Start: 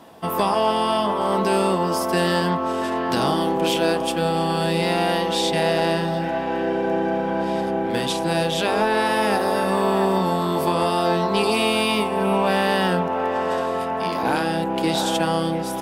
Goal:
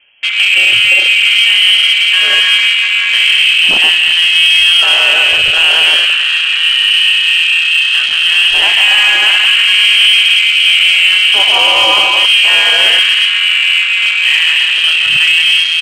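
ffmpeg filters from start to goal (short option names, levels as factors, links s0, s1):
-filter_complex "[0:a]lowpass=f=2900:t=q:w=0.5098,lowpass=f=2900:t=q:w=0.6013,lowpass=f=2900:t=q:w=0.9,lowpass=f=2900:t=q:w=2.563,afreqshift=-3400,aecho=1:1:170|272|333.2|369.9|392:0.631|0.398|0.251|0.158|0.1,afwtdn=0.0501,apsyclip=3.35,asplit=2[s0][s1];[s1]acontrast=50,volume=1[s2];[s0][s2]amix=inputs=2:normalize=0,volume=0.422"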